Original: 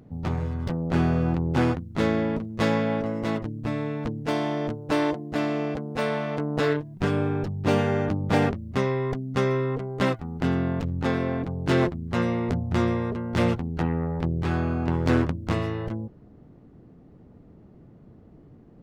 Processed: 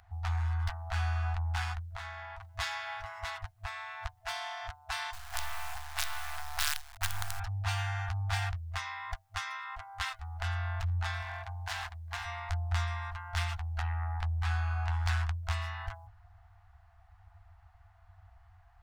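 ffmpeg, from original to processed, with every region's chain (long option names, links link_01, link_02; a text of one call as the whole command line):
ffmpeg -i in.wav -filter_complex "[0:a]asettb=1/sr,asplit=3[link_01][link_02][link_03];[link_01]atrim=end=1.914[link_04];[link_02]atrim=start=1.91:end=2.41,asetpts=PTS-STARTPTS,afade=type=in:duration=0.004:curve=qsin,afade=type=out:start_time=0.496:duration=0.004:curve=qsin,acompressor=threshold=-36dB:ratio=2.5:attack=3.2:release=140:knee=1:detection=peak,equalizer=frequency=240:width_type=o:width=1.8:gain=11.5[link_05];[link_03]atrim=start=2.406[link_06];[link_04][link_05]acrossfade=duration=0.004:curve1=hsin:curve2=qsin[link_07];[link_07][link_06]acrossfade=duration=0.004:curve1=qsin:curve2=hsin,asettb=1/sr,asplit=3[link_08][link_09][link_10];[link_08]atrim=end=5.134[link_11];[link_09]atrim=start=5.13:end=7.4,asetpts=PTS-STARTPTS,afade=type=in:duration=0.004:curve=qsin,afade=type=out:start_time=2.266:duration=0.004:curve=qsin,lowshelf=frequency=150:gain=-4.5,acrusher=bits=4:dc=4:mix=0:aa=0.000001[link_12];[link_10]atrim=start=7.396[link_13];[link_11][link_12]acrossfade=duration=0.004:curve1=hsin:curve2=qsin[link_14];[link_14][link_13]acrossfade=duration=0.004:curve1=qsin:curve2=hsin,asettb=1/sr,asplit=3[link_15][link_16][link_17];[link_15]atrim=end=11.224[link_18];[link_16]atrim=start=11.22:end=12.25,asetpts=PTS-STARTPTS,afade=type=in:duration=0.004:curve=qsin,afade=type=out:start_time=1.026:duration=0.004:curve=qsin,bandreject=frequency=1300:width=6.3,asoftclip=type=hard:threshold=-22.5dB,highpass=frequency=130:poles=1[link_19];[link_17]atrim=start=12.246[link_20];[link_18][link_19]acrossfade=duration=0.004:curve1=hsin:curve2=qsin[link_21];[link_21][link_20]acrossfade=duration=0.004:curve1=qsin:curve2=hsin,afftfilt=real='re*(1-between(b*sr/4096,100,660))':imag='im*(1-between(b*sr/4096,100,660))':win_size=4096:overlap=0.75,equalizer=frequency=1600:width=2.2:gain=5,acrossover=split=140|3000[link_22][link_23][link_24];[link_23]acompressor=threshold=-40dB:ratio=3[link_25];[link_22][link_25][link_24]amix=inputs=3:normalize=0" out.wav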